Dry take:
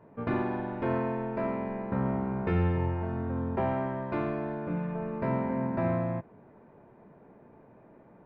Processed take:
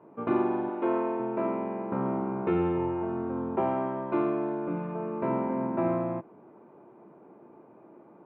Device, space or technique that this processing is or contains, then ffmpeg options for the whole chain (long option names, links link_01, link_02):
kitchen radio: -filter_complex "[0:a]asettb=1/sr,asplit=3[link_01][link_02][link_03];[link_01]atrim=end=0.694[link_04];[link_02]atrim=start=0.69:end=1.2,asetpts=PTS-STARTPTS,afade=type=in:duration=0.004:curve=qsin,afade=type=out:start_time=0.506:duration=0.004:curve=qsin,highpass=260[link_05];[link_03]atrim=start=1.196[link_06];[link_04][link_05]acrossfade=duration=0.004:curve1=hsin:curve2=qsin[link_07];[link_07][link_06]acrossfade=duration=0.004:curve1=qsin:curve2=hsin,highpass=180,equalizer=frequency=340:width_type=q:width=4:gain=9,equalizer=frequency=820:width_type=q:width=4:gain=3,equalizer=frequency=1200:width_type=q:width=4:gain=5,equalizer=frequency=1800:width_type=q:width=4:gain=-8,lowpass=frequency=3400:width=0.5412,lowpass=frequency=3400:width=1.3066"